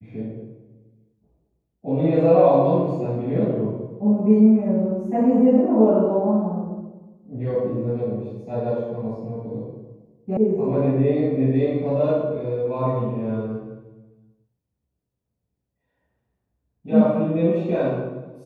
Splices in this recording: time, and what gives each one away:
10.37 sound cut off

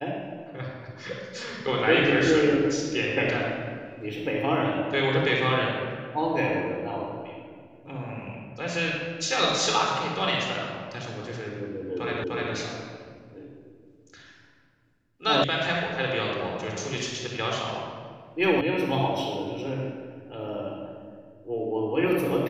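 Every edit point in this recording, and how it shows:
12.24 repeat of the last 0.3 s
15.44 sound cut off
18.61 sound cut off

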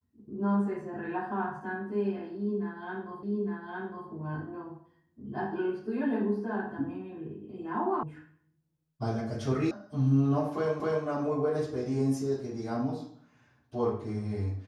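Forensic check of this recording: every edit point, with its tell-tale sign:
3.23 repeat of the last 0.86 s
8.03 sound cut off
9.71 sound cut off
10.8 repeat of the last 0.26 s

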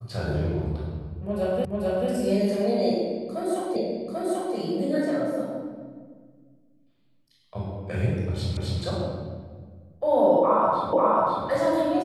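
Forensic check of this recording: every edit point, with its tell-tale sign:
1.65 repeat of the last 0.44 s
3.76 repeat of the last 0.79 s
8.57 repeat of the last 0.26 s
10.93 repeat of the last 0.54 s

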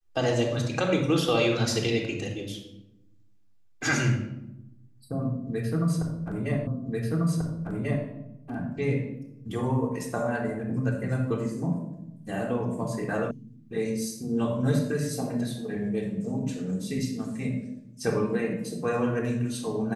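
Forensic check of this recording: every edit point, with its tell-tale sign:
6.67 repeat of the last 1.39 s
13.31 sound cut off

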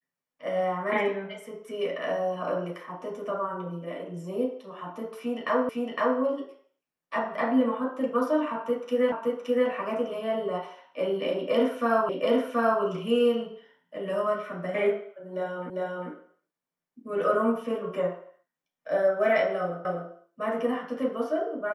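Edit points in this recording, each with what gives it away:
5.69 repeat of the last 0.51 s
9.12 repeat of the last 0.57 s
12.09 repeat of the last 0.73 s
15.7 repeat of the last 0.4 s
19.85 repeat of the last 0.25 s

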